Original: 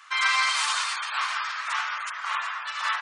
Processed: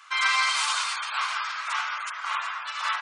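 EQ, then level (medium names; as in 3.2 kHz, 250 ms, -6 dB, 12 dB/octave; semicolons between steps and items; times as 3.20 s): band-stop 1.8 kHz, Q 12; 0.0 dB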